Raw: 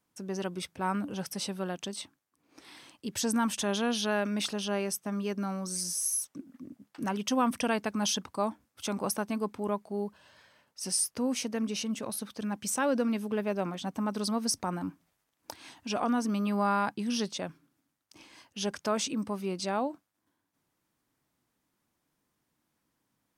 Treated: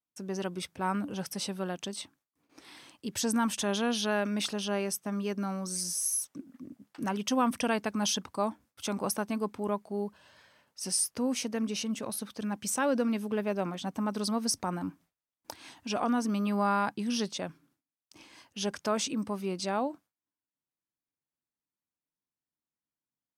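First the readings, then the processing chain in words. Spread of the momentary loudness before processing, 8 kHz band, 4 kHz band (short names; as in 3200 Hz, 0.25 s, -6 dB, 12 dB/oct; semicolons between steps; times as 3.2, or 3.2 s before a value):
12 LU, 0.0 dB, 0.0 dB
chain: gate with hold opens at -60 dBFS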